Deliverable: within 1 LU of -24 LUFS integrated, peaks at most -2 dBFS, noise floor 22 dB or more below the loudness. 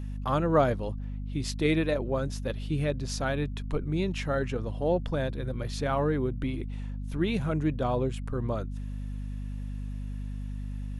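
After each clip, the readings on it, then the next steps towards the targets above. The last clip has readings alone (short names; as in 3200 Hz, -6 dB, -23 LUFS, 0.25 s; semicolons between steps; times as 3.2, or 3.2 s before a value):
hum 50 Hz; harmonics up to 250 Hz; hum level -32 dBFS; loudness -30.5 LUFS; peak -11.5 dBFS; loudness target -24.0 LUFS
-> notches 50/100/150/200/250 Hz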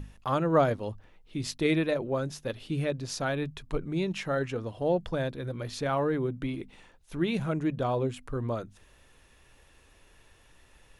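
hum none; loudness -30.5 LUFS; peak -11.5 dBFS; loudness target -24.0 LUFS
-> gain +6.5 dB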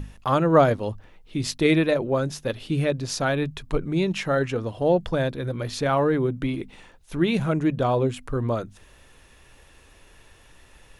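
loudness -24.0 LUFS; peak -5.0 dBFS; noise floor -53 dBFS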